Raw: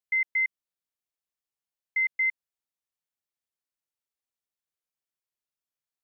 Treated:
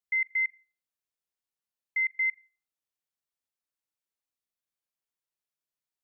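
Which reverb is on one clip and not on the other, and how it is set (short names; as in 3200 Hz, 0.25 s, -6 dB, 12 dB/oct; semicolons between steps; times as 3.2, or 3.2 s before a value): Schroeder reverb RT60 0.35 s, combs from 29 ms, DRR 19.5 dB; gain -2 dB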